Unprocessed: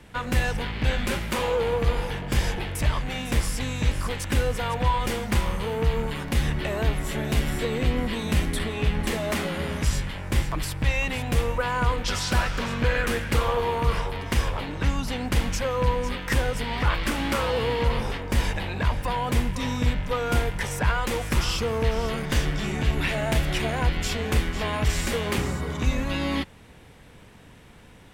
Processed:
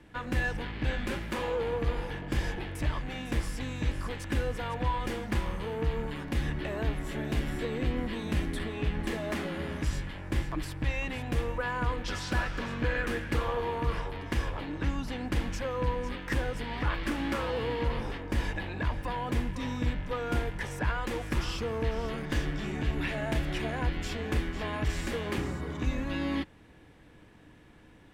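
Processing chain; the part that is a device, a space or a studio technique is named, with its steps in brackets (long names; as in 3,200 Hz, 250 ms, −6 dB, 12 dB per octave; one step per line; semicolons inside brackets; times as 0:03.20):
inside a helmet (high-shelf EQ 5,200 Hz −8 dB; hollow resonant body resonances 310/1,700 Hz, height 10 dB, ringing for 70 ms)
level −7 dB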